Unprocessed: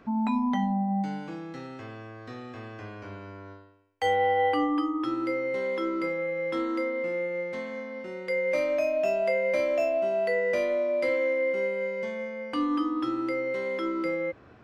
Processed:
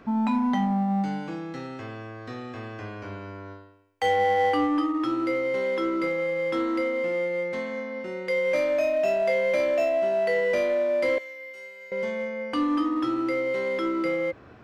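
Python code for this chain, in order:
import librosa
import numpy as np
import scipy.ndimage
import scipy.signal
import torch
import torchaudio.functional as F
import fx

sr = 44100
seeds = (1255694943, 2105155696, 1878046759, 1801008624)

p1 = fx.differentiator(x, sr, at=(11.18, 11.92))
p2 = np.clip(p1, -10.0 ** (-29.0 / 20.0), 10.0 ** (-29.0 / 20.0))
y = p1 + F.gain(torch.from_numpy(p2), -5.0).numpy()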